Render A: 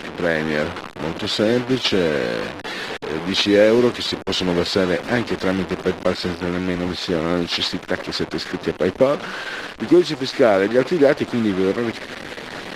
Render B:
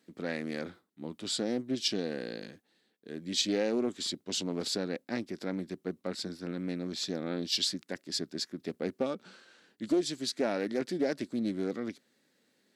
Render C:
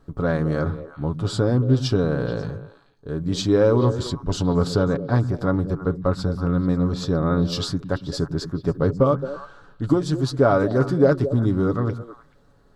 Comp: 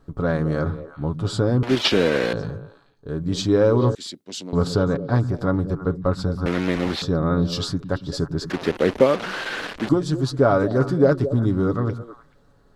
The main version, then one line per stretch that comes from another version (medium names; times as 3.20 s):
C
1.63–2.33 s: from A
3.95–4.53 s: from B
6.46–7.02 s: from A
8.50–9.89 s: from A